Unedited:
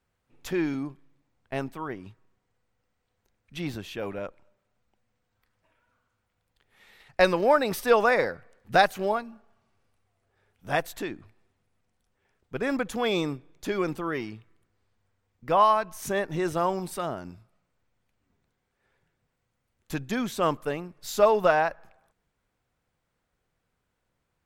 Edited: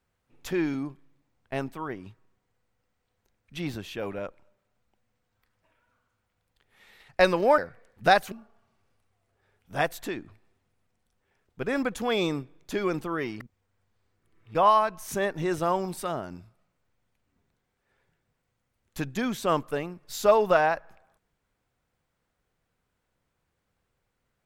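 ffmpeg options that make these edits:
-filter_complex "[0:a]asplit=5[s0][s1][s2][s3][s4];[s0]atrim=end=7.582[s5];[s1]atrim=start=8.258:end=9.002[s6];[s2]atrim=start=9.258:end=14.342[s7];[s3]atrim=start=14.338:end=15.492,asetpts=PTS-STARTPTS,areverse[s8];[s4]atrim=start=15.488[s9];[s5][s6]acrossfade=d=0.004:c1=hsin:c2=hsin[s10];[s10][s7]acrossfade=d=0.004:c1=hsin:c2=hsin[s11];[s11][s8]acrossfade=d=0.004:c1=hsin:c2=hsin[s12];[s12][s9]acrossfade=d=0.004:c1=hsin:c2=hsin"

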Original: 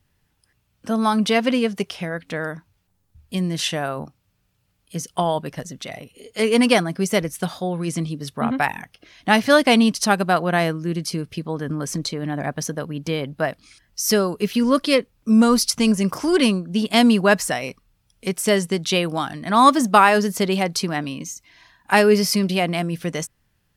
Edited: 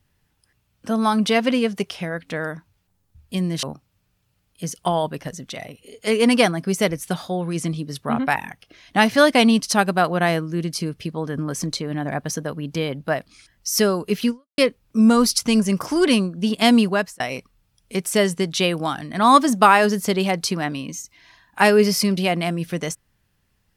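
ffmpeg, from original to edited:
-filter_complex "[0:a]asplit=4[s0][s1][s2][s3];[s0]atrim=end=3.632[s4];[s1]atrim=start=3.948:end=14.9,asetpts=PTS-STARTPTS,afade=t=out:st=10.662:d=0.29:c=exp[s5];[s2]atrim=start=14.9:end=17.52,asetpts=PTS-STARTPTS,afade=t=in:d=0.004:c=hsin,afade=t=out:st=2.21:d=0.41[s6];[s3]atrim=start=17.52,asetpts=PTS-STARTPTS,afade=t=in:d=0.004:c=hsin[s7];[s5][s6][s7]concat=n=3:v=0:a=1[s8];[s4][s8]acrossfade=d=0.004:c1=hsin:c2=hsin"

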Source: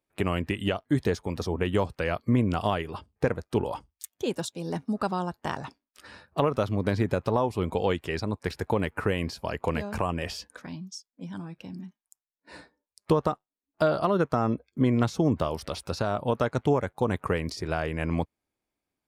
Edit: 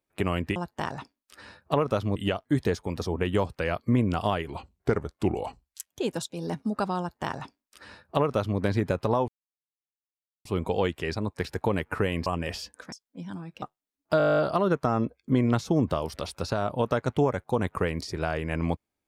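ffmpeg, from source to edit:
-filter_complex "[0:a]asplit=19[s0][s1][s2][s3][s4][s5][s6][s7][s8][s9][s10][s11][s12][s13][s14][s15][s16][s17][s18];[s0]atrim=end=0.562[s19];[s1]atrim=start=5.218:end=6.822[s20];[s2]atrim=start=0.558:end=2.874[s21];[s3]atrim=start=2.87:end=4.13,asetpts=PTS-STARTPTS,asetrate=38808,aresample=44100,atrim=end_sample=63143,asetpts=PTS-STARTPTS[s22];[s4]atrim=start=4.126:end=7.51,asetpts=PTS-STARTPTS,afade=t=out:st=3.38:d=0.004:c=hsin,apad=pad_dur=1.17[s23];[s5]atrim=start=7.51:end=9.322,asetpts=PTS-STARTPTS,afade=t=in:d=0.004:c=hsin[s24];[s6]atrim=start=10.018:end=10.682[s25];[s7]atrim=start=10.958:end=11.662[s26];[s8]atrim=start=13.308:end=13.892[s27];[s9]atrim=start=13.868:end=13.892[s28];[s10]atrim=start=13.868:end=13.892[s29];[s11]atrim=start=13.868:end=13.892[s30];[s12]atrim=start=13.868:end=13.892[s31];[s13]atrim=start=13.868:end=13.892[s32];[s14]atrim=start=13.868:end=13.892[s33];[s15]atrim=start=13.868:end=13.892[s34];[s16]atrim=start=13.868:end=13.892[s35];[s17]atrim=start=13.868:end=13.892[s36];[s18]atrim=start=13.868[s37];[s19][s20]acrossfade=d=0.004:c1=hsin:c2=hsin[s38];[s38][s21]acrossfade=d=0.004:c1=hsin:c2=hsin[s39];[s39][s22]acrossfade=d=0.004:c1=hsin:c2=hsin[s40];[s23][s24]concat=n=2:v=0:a=1[s41];[s40][s41]acrossfade=d=0.004:c1=hsin:c2=hsin[s42];[s42][s25]acrossfade=d=0.004:c1=hsin:c2=hsin[s43];[s43][s26]acrossfade=d=0.004:c1=hsin:c2=hsin[s44];[s44][s27]acrossfade=d=0.004:c1=hsin:c2=hsin[s45];[s45][s28]acrossfade=d=0.004:c1=hsin:c2=hsin[s46];[s46][s29]acrossfade=d=0.004:c1=hsin:c2=hsin[s47];[s47][s30]acrossfade=d=0.004:c1=hsin:c2=hsin[s48];[s48][s31]acrossfade=d=0.004:c1=hsin:c2=hsin[s49];[s49][s32]acrossfade=d=0.004:c1=hsin:c2=hsin[s50];[s50][s33]acrossfade=d=0.004:c1=hsin:c2=hsin[s51];[s51][s34]acrossfade=d=0.004:c1=hsin:c2=hsin[s52];[s52][s35]acrossfade=d=0.004:c1=hsin:c2=hsin[s53];[s53][s36]acrossfade=d=0.004:c1=hsin:c2=hsin[s54];[s54][s37]acrossfade=d=0.004:c1=hsin:c2=hsin"

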